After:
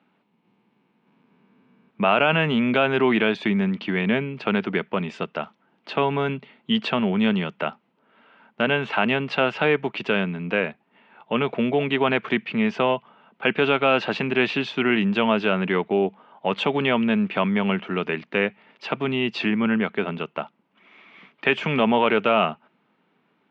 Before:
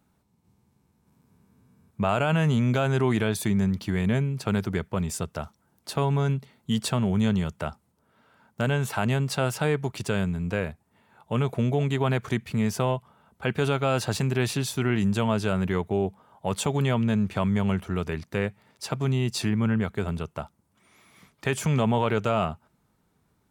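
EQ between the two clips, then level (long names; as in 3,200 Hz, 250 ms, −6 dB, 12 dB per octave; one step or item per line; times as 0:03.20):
high-pass filter 200 Hz 24 dB per octave
low-pass with resonance 2,800 Hz, resonance Q 2.7
high-frequency loss of the air 140 metres
+5.5 dB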